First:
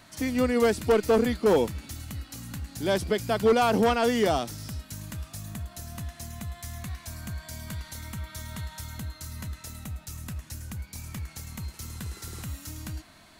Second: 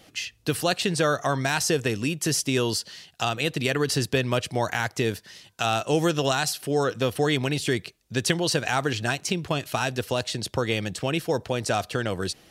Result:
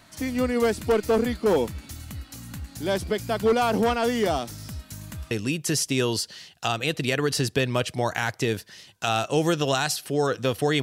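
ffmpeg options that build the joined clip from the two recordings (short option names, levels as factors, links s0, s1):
-filter_complex "[0:a]apad=whole_dur=10.82,atrim=end=10.82,atrim=end=5.312[s0];[1:a]atrim=start=1.878:end=7.39[s1];[s0][s1]acrossfade=d=0.004:c1=hsin:c2=hsin"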